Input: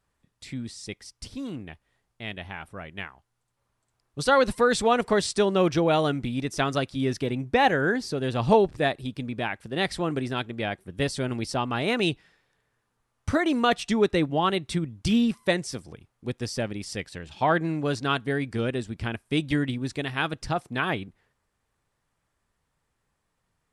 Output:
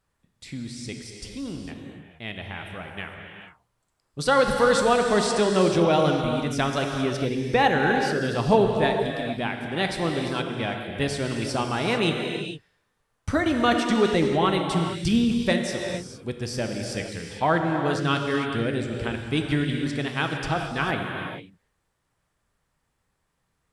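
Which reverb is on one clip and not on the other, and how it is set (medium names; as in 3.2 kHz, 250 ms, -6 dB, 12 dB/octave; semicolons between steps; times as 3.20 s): gated-style reverb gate 480 ms flat, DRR 2.5 dB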